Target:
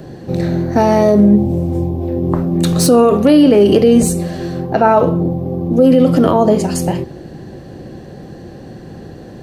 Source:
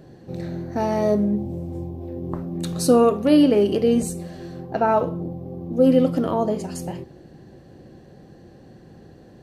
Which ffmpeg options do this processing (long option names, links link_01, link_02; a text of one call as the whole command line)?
ffmpeg -i in.wav -filter_complex "[0:a]acrossover=split=360|840|2200[link_01][link_02][link_03][link_04];[link_04]asoftclip=type=tanh:threshold=-25.5dB[link_05];[link_01][link_02][link_03][link_05]amix=inputs=4:normalize=0,alimiter=level_in=14.5dB:limit=-1dB:release=50:level=0:latency=1,volume=-1dB" out.wav